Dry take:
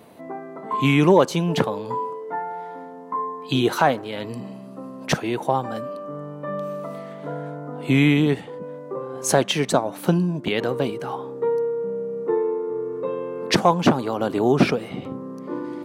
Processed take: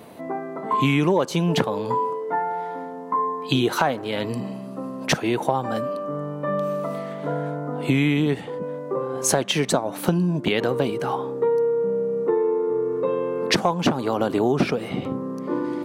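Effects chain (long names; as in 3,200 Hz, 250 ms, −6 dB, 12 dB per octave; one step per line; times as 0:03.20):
downward compressor 4 to 1, threshold −22 dBFS, peak gain reduction 10.5 dB
level +4.5 dB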